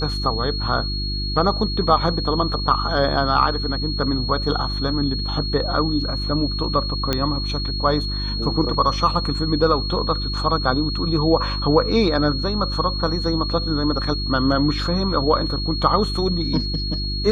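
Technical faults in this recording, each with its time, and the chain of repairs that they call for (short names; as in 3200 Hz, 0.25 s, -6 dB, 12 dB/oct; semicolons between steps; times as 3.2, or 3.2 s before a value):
hum 50 Hz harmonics 7 -26 dBFS
tone 4300 Hz -27 dBFS
7.13 pop -6 dBFS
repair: de-click; notch 4300 Hz, Q 30; de-hum 50 Hz, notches 7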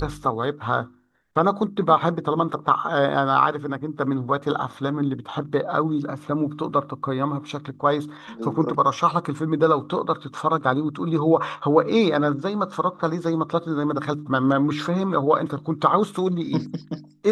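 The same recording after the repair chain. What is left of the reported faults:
none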